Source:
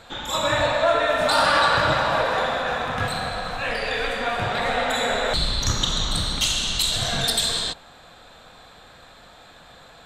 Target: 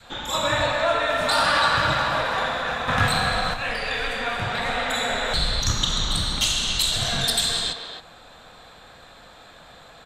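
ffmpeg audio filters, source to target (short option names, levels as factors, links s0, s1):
-filter_complex "[0:a]asplit=2[s0][s1];[s1]adelay=270,highpass=300,lowpass=3400,asoftclip=type=hard:threshold=0.188,volume=0.447[s2];[s0][s2]amix=inputs=2:normalize=0,adynamicequalizer=threshold=0.0178:dfrequency=500:dqfactor=0.78:tfrequency=500:tqfactor=0.78:attack=5:release=100:ratio=0.375:range=3:mode=cutabove:tftype=bell,asettb=1/sr,asplit=3[s3][s4][s5];[s3]atrim=end=2.884[s6];[s4]atrim=start=2.88:end=3.54,asetpts=PTS-STARTPTS,afade=t=in:d=0.004:c=qsin,afade=t=out:st=0.656:d=0.004:c=qsin,acontrast=57[s7];[s5]atrim=start=3.536[s8];[s6][s7]acrossfade=d=0.004:c1=hsin:c2=qsin[s9];[s9][s8]acrossfade=d=0.004:c1=qsin:c2=hsin"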